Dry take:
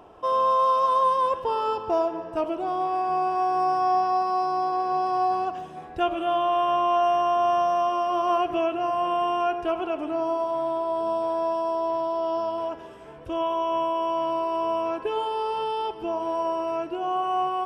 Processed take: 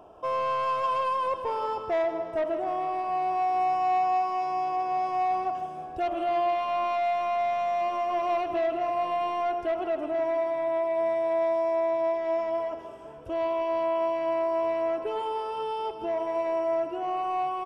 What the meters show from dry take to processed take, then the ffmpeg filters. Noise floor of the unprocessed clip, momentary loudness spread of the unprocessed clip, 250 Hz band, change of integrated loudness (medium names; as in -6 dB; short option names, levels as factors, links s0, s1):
-41 dBFS, 7 LU, -5.5 dB, -3.0 dB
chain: -af "equalizer=f=630:t=o:w=0.33:g=7,equalizer=f=2000:t=o:w=0.33:g=-11,equalizer=f=4000:t=o:w=0.33:g=-6,asoftclip=type=tanh:threshold=0.119,aecho=1:1:161|322|483|644|805|966:0.237|0.135|0.077|0.0439|0.025|0.0143,volume=0.668"